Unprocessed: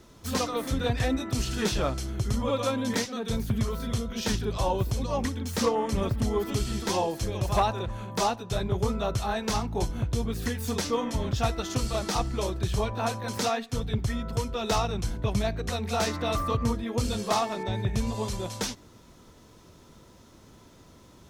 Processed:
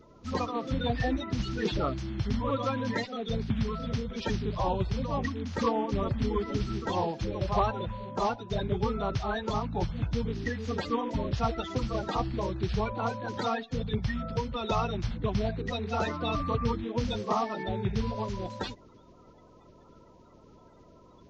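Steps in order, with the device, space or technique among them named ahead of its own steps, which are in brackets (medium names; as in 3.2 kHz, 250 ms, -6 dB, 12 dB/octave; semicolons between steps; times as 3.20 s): clip after many re-uploads (low-pass 4.4 kHz 24 dB/octave; coarse spectral quantiser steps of 30 dB); trim -1.5 dB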